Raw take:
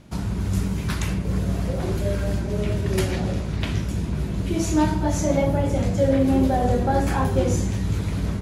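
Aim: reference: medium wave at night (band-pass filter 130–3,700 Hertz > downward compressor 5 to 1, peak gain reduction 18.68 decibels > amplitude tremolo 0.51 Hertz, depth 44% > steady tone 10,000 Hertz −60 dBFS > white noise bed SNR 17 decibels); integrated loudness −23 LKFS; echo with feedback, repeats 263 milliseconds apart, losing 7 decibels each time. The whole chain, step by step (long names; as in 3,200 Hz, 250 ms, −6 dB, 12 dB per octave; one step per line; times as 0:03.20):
band-pass filter 130–3,700 Hz
repeating echo 263 ms, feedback 45%, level −7 dB
downward compressor 5 to 1, threshold −36 dBFS
amplitude tremolo 0.51 Hz, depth 44%
steady tone 10,000 Hz −60 dBFS
white noise bed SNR 17 dB
level +17 dB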